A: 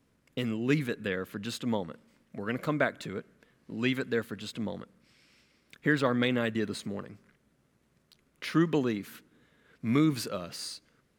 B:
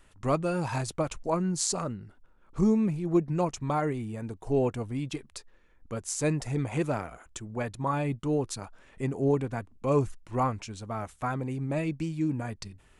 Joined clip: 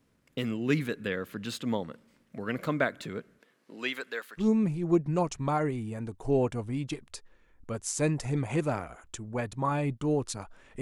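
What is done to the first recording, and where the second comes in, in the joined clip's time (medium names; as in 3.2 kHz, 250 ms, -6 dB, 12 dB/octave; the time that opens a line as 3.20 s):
A
3.38–4.49 s: high-pass 230 Hz -> 1.2 kHz
4.43 s: go over to B from 2.65 s, crossfade 0.12 s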